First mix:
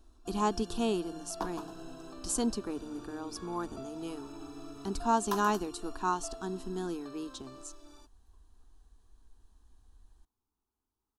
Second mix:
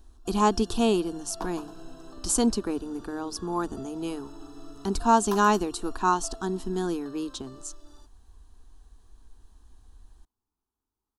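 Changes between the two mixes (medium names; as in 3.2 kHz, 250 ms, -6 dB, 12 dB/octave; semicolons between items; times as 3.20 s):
speech +7.5 dB; first sound: add Butterworth band-stop 2.3 kHz, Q 3.9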